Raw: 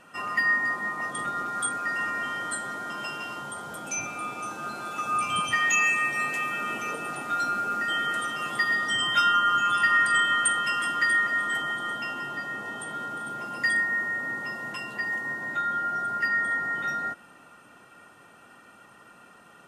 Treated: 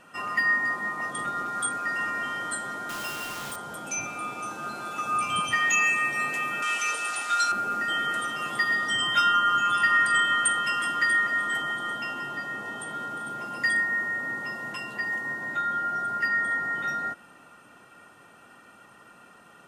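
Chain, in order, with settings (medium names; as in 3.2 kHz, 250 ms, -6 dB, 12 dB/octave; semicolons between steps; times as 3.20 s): 2.89–3.56 s: word length cut 6-bit, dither none; 6.62–7.52 s: frequency weighting ITU-R 468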